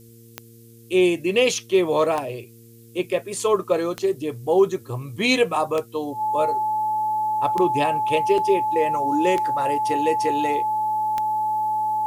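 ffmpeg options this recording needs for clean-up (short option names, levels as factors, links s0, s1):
-af "adeclick=t=4,bandreject=f=115.3:t=h:w=4,bandreject=f=230.6:t=h:w=4,bandreject=f=345.9:t=h:w=4,bandreject=f=461.2:t=h:w=4,bandreject=f=860:w=30,agate=range=0.0891:threshold=0.0112"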